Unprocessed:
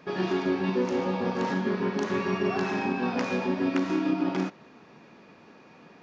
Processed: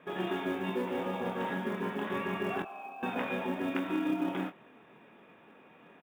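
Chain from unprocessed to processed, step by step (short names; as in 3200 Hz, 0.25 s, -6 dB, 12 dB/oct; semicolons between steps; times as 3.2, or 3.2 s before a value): Chebyshev low-pass 3700 Hz, order 10; low shelf 220 Hz -6 dB; 2.62–3.03 vowel filter a; short-mantissa float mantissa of 4-bit; doubler 23 ms -8 dB; gain -3.5 dB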